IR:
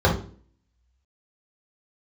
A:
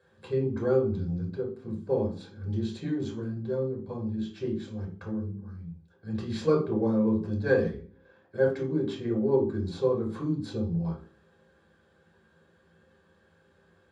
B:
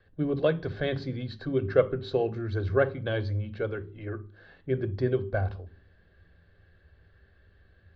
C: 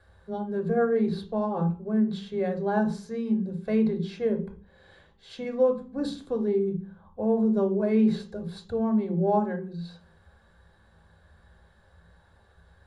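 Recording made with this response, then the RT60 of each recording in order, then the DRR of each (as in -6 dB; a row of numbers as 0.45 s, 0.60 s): A; 0.45 s, 0.45 s, 0.45 s; -3.5 dB, 10.5 dB, 3.5 dB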